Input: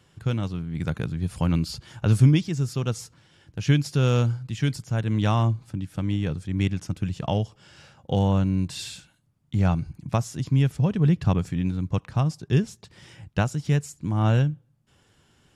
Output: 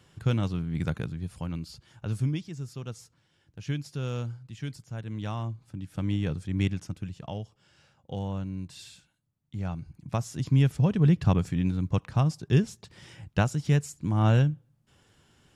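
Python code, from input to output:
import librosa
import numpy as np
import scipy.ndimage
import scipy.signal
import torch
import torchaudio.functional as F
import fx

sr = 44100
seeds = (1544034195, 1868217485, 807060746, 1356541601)

y = fx.gain(x, sr, db=fx.line((0.75, 0.0), (1.49, -11.5), (5.55, -11.5), (6.04, -2.5), (6.65, -2.5), (7.23, -11.5), (9.71, -11.5), (10.48, -1.0)))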